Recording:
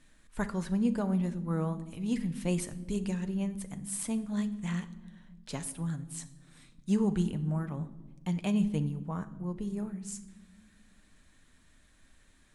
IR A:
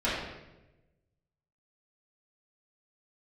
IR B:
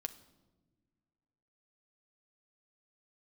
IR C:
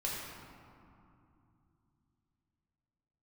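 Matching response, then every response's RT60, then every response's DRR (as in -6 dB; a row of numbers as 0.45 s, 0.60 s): B; 1.0 s, no single decay rate, 2.7 s; -11.5 dB, 9.0 dB, -5.5 dB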